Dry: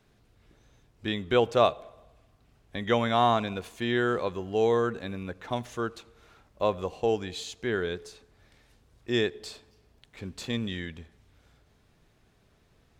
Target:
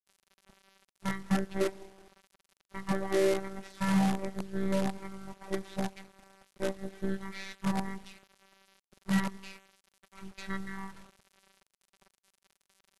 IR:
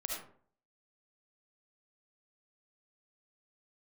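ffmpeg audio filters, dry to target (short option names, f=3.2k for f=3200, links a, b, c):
-filter_complex "[0:a]aeval=exprs='if(lt(val(0),0),0.708*val(0),val(0))':c=same,aecho=1:1:5.6:0.7,alimiter=limit=-15.5dB:level=0:latency=1:release=479,asplit=2[a][b];[b]adelay=188,lowpass=f=2.2k:p=1,volume=-20.5dB,asplit=2[c][d];[d]adelay=188,lowpass=f=2.2k:p=1,volume=0.18[e];[a][c][e]amix=inputs=3:normalize=0,afftfilt=real='hypot(re,im)*cos(PI*b)':imag='0':win_size=512:overlap=0.75,asplit=2[f][g];[g]asetrate=37084,aresample=44100,atempo=1.18921,volume=-14dB[h];[f][h]amix=inputs=2:normalize=0,acrusher=bits=6:dc=4:mix=0:aa=0.000001,asetrate=24750,aresample=44100,atempo=1.7818"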